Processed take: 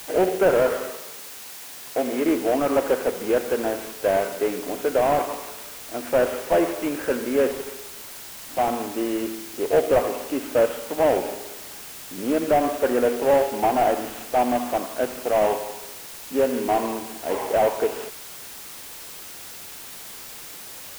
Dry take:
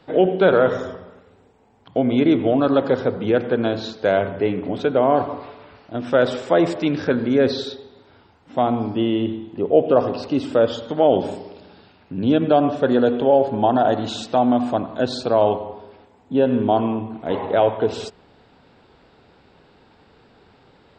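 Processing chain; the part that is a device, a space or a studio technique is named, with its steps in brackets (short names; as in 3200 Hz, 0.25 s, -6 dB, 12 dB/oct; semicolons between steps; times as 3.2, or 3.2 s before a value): army field radio (BPF 370–3000 Hz; CVSD 16 kbps; white noise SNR 15 dB); 0.9–2.25 HPF 180 Hz 6 dB/oct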